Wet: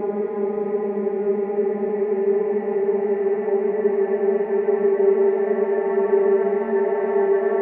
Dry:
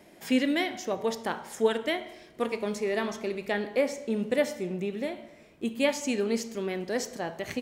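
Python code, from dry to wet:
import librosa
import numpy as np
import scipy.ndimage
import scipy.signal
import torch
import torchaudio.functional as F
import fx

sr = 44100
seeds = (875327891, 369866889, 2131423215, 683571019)

y = scipy.signal.sosfilt(scipy.signal.butter(4, 1800.0, 'lowpass', fs=sr, output='sos'), x)
y = fx.paulstretch(y, sr, seeds[0], factor=39.0, window_s=0.5, from_s=2.75)
y = fx.small_body(y, sr, hz=(350.0, 800.0), ring_ms=25, db=14)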